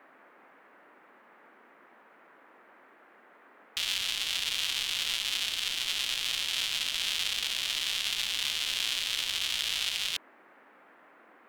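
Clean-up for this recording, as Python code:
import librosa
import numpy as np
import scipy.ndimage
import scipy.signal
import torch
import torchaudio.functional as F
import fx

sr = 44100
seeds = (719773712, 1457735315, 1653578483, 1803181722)

y = fx.noise_reduce(x, sr, print_start_s=10.31, print_end_s=10.81, reduce_db=22.0)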